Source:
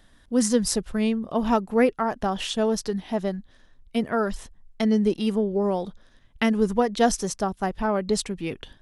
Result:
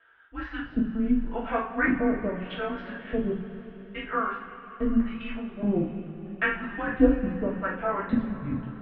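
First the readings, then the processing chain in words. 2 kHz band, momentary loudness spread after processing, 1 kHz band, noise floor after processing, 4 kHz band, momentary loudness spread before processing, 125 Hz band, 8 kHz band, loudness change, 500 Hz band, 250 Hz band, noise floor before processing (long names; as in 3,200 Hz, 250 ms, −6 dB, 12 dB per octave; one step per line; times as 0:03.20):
+3.5 dB, 14 LU, −5.0 dB, −46 dBFS, −13.0 dB, 9 LU, −2.0 dB, below −40 dB, −3.5 dB, −6.5 dB, −2.5 dB, −57 dBFS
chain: auto-filter band-pass square 0.8 Hz 380–1,800 Hz
single-sideband voice off tune −200 Hz 220–3,300 Hz
coupled-rooms reverb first 0.4 s, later 4.3 s, from −18 dB, DRR −7 dB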